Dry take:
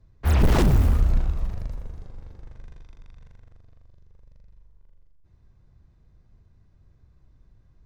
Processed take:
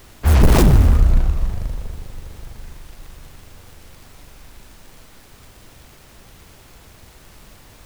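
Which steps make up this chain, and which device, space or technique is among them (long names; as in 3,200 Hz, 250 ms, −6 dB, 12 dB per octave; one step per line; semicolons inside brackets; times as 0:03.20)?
record under a worn stylus (stylus tracing distortion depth 0.38 ms; surface crackle; pink noise bed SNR 28 dB)
level +6.5 dB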